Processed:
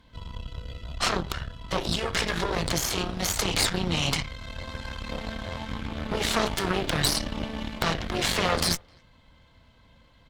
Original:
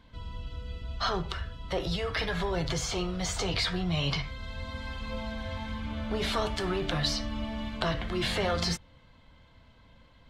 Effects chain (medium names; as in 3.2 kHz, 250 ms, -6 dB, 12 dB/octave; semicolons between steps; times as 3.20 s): treble shelf 5.4 kHz +6 dB; Chebyshev shaper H 6 -8 dB, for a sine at -11.5 dBFS; speakerphone echo 260 ms, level -30 dB